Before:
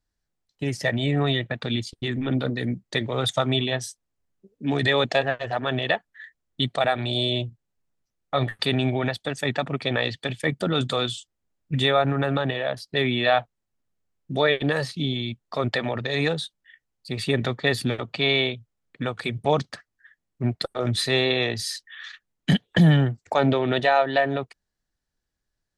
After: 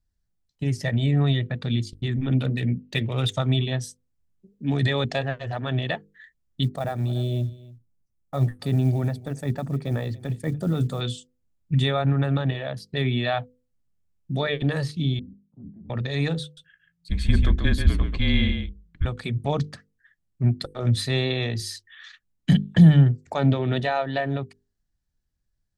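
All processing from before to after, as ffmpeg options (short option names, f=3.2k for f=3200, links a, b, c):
-filter_complex "[0:a]asettb=1/sr,asplit=3[a][b][c];[a]atrim=end=2.324[d];[b]atrim=start=2.32:end=3.32,asetpts=PTS-STARTPTS,afade=t=in:d=0.004:c=qsin,afade=t=out:st=0.996:d=0.004:c=qsin,equalizer=f=2.7k:t=o:w=0.41:g=12.5,adynamicsmooth=sensitivity=5:basefreq=6.4k[e];[c]atrim=start=3.316[f];[d][e]acrossfade=d=0.004:c1=hsin:c2=qsin[g];[g][f]acrossfade=d=0.004:c1=qsin:c2=hsin,asettb=1/sr,asplit=3[h][i][j];[h]atrim=end=6.634[k];[i]atrim=start=6.63:end=11.01,asetpts=PTS-STARTPTS,afade=t=in:d=0.004:c=qsin,afade=t=out:st=4.376:d=0.004:c=qsin,equalizer=f=3.1k:t=o:w=1.8:g=-13,acrusher=bits=7:mode=log:mix=0:aa=0.000001,aecho=1:1:288:0.0944,atrim=end_sample=193158[l];[j]atrim=start=11.006[m];[k][l]acrossfade=d=0.004:c1=hsin:c2=qsin[n];[n][m]acrossfade=d=0.004:c1=qsin:c2=hsin,asettb=1/sr,asplit=3[o][p][q];[o]atrim=end=15.194[r];[p]atrim=start=15.19:end=15.9,asetpts=PTS-STARTPTS,afade=t=in:d=0.004:c=qsin,afade=t=out:st=0.706:d=0.004:c=qsin,aeval=exprs='val(0)*sin(2*PI*160*n/s)':c=same,asuperpass=centerf=170:order=4:qfactor=2.2,asplit=2[s][t];[t]adelay=24,volume=-11.5dB[u];[s][u]amix=inputs=2:normalize=0,atrim=end_sample=31311[v];[q]atrim=start=15.896[w];[r][v]acrossfade=d=0.004:c1=hsin:c2=qsin[x];[x][w]acrossfade=d=0.004:c1=qsin:c2=hsin,asettb=1/sr,asplit=3[y][z][aa];[y]atrim=end=16.434[ab];[z]atrim=start=16.43:end=19.05,asetpts=PTS-STARTPTS,afade=t=in:d=0.004:c=qsin,afade=t=out:st=2.616:d=0.004:c=qsin,bass=f=250:g=3,treble=f=4k:g=-3,aecho=1:1:138:0.501,atrim=end_sample=115542,afreqshift=-170[ac];[aa]atrim=start=19.046[ad];[ab][ac]acrossfade=d=0.004:c1=hsin:c2=qsin[ae];[ae][ad]acrossfade=d=0.004:c1=qsin:c2=hsin,bass=f=250:g=13,treble=f=4k:g=3,bandreject=f=50:t=h:w=6,bandreject=f=100:t=h:w=6,bandreject=f=150:t=h:w=6,bandreject=f=200:t=h:w=6,bandreject=f=250:t=h:w=6,bandreject=f=300:t=h:w=6,bandreject=f=350:t=h:w=6,bandreject=f=400:t=h:w=6,bandreject=f=450:t=h:w=6,bandreject=f=500:t=h:w=6,volume=-6dB"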